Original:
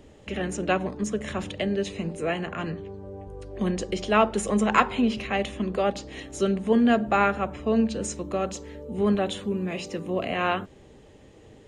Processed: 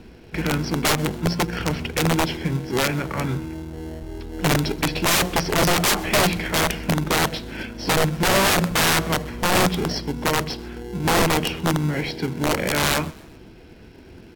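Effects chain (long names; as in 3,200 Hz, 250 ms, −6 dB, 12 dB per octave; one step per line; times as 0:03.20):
Butterworth low-pass 6,600 Hz 72 dB per octave
high-shelf EQ 2,400 Hz +7 dB
in parallel at −5 dB: sample-rate reduction 1,500 Hz, jitter 0%
on the sum: wrap-around overflow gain 16 dB
change of speed 0.813×
on a send: echo with shifted repeats 129 ms, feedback 47%, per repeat +35 Hz, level −23 dB
on the sum: level +3 dB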